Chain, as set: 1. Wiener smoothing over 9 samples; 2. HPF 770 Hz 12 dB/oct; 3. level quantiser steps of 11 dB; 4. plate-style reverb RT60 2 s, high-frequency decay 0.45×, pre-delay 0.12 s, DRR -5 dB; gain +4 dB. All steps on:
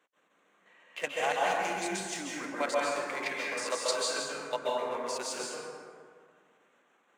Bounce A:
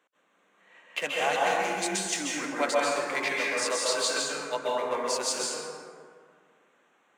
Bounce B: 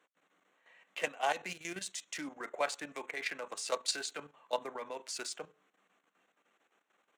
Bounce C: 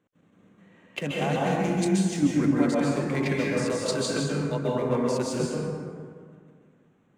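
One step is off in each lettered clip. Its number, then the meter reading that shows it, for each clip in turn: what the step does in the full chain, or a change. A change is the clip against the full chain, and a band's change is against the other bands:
3, crest factor change -3.5 dB; 4, crest factor change +4.0 dB; 2, 125 Hz band +25.5 dB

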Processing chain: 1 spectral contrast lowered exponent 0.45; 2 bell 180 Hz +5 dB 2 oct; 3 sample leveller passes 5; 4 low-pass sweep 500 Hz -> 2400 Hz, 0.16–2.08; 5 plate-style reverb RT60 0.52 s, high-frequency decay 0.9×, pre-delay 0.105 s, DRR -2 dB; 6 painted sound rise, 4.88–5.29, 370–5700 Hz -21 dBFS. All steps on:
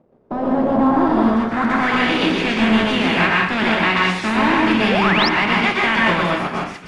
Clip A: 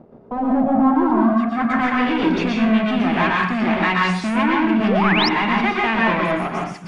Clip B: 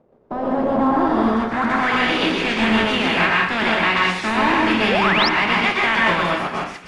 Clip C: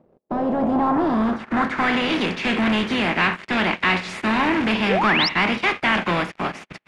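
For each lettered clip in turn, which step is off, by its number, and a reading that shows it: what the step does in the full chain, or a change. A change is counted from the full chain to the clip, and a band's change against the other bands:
1, 4 kHz band -4.0 dB; 2, 125 Hz band -3.5 dB; 5, loudness change -4.0 LU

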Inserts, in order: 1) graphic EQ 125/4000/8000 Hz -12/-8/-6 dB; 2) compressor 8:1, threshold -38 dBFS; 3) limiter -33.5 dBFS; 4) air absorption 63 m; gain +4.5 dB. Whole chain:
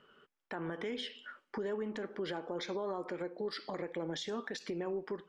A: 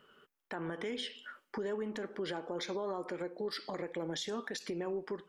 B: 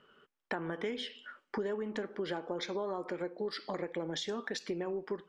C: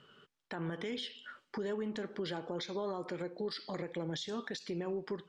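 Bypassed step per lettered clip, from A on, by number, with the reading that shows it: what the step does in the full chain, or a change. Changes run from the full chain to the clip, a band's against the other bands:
4, 8 kHz band +4.5 dB; 3, crest factor change +7.5 dB; 1, 125 Hz band +4.5 dB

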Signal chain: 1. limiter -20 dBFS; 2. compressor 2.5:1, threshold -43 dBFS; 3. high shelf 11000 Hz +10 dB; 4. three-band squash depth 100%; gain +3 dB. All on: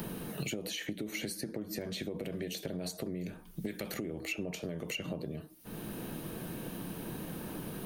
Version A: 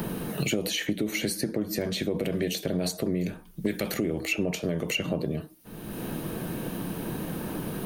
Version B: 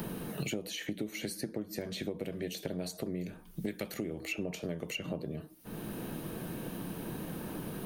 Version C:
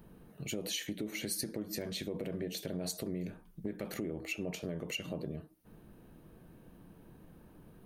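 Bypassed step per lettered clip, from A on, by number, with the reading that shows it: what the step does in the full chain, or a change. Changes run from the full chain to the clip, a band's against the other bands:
2, mean gain reduction 6.0 dB; 1, 8 kHz band -2.0 dB; 4, momentary loudness spread change +17 LU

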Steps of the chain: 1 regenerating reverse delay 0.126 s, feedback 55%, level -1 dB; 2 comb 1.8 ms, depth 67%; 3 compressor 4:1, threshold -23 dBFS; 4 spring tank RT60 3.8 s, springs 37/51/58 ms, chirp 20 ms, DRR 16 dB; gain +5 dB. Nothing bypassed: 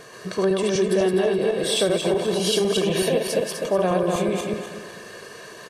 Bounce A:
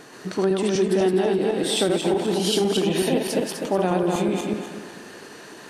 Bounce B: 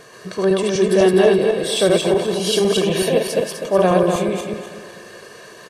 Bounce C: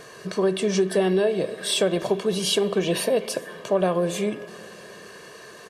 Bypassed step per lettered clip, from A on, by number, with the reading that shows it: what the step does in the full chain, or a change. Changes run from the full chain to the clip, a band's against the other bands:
2, 250 Hz band +3.0 dB; 3, mean gain reduction 2.5 dB; 1, momentary loudness spread change +4 LU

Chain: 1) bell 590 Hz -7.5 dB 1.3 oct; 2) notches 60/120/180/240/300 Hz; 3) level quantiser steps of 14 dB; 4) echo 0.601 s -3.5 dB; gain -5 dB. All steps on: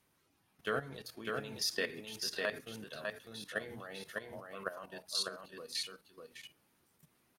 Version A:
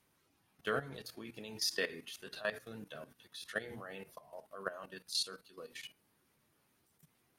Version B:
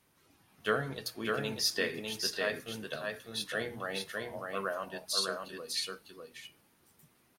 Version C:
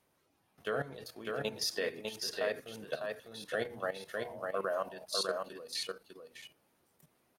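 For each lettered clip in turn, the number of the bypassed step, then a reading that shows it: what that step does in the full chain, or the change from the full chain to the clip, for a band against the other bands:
4, momentary loudness spread change +2 LU; 3, crest factor change -2.5 dB; 1, 500 Hz band +5.0 dB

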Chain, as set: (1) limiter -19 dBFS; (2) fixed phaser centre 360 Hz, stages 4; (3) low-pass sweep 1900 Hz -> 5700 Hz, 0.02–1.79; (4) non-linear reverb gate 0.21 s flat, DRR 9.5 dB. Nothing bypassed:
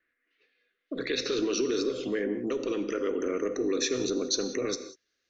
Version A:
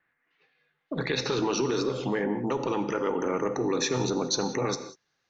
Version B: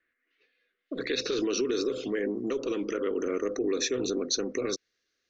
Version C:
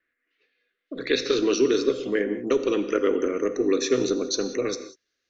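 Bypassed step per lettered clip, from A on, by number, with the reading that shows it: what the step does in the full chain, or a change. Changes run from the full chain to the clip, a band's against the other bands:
2, 125 Hz band +11.0 dB; 4, momentary loudness spread change -1 LU; 1, mean gain reduction 3.5 dB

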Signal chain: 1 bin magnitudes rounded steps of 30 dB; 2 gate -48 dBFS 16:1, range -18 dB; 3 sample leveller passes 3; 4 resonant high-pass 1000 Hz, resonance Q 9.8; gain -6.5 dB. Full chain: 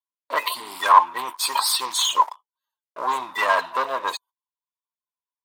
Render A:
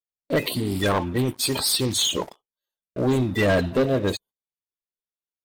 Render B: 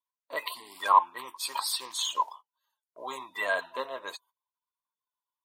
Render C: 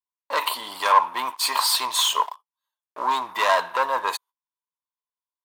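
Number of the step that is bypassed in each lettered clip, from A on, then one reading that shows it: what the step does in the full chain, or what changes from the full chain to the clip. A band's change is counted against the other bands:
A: 4, 250 Hz band +22.5 dB; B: 3, crest factor change +2.0 dB; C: 1, 500 Hz band +2.0 dB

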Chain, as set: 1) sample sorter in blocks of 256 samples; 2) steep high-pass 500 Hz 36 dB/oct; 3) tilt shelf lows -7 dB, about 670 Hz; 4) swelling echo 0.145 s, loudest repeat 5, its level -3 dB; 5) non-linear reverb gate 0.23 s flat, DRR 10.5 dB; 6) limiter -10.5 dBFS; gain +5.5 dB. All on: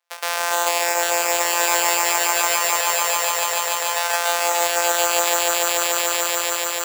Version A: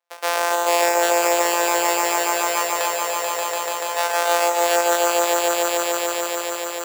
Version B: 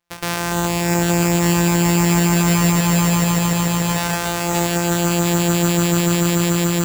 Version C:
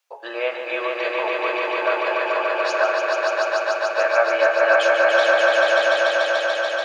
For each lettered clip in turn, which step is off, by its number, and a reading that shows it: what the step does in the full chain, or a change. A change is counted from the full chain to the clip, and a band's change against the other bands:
3, 250 Hz band +9.0 dB; 2, 250 Hz band +25.5 dB; 1, 8 kHz band -24.0 dB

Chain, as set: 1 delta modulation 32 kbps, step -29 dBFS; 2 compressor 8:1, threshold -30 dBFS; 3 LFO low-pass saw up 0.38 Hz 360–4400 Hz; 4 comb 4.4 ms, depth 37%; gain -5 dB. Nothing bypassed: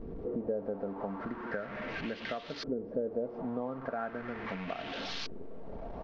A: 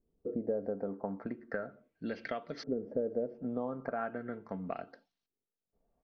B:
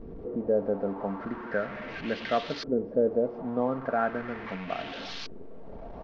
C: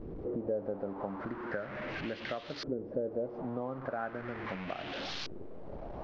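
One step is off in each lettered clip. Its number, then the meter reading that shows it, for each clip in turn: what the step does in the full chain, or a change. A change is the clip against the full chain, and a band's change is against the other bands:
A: 1, 4 kHz band -10.5 dB; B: 2, mean gain reduction 4.0 dB; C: 4, 125 Hz band +2.0 dB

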